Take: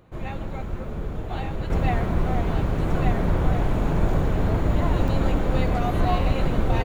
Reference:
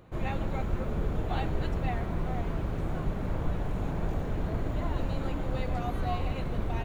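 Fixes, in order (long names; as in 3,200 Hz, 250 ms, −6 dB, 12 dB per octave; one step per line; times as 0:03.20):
repair the gap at 0:05.08, 2.4 ms
echo removal 1,179 ms −3.5 dB
level 0 dB, from 0:01.70 −8 dB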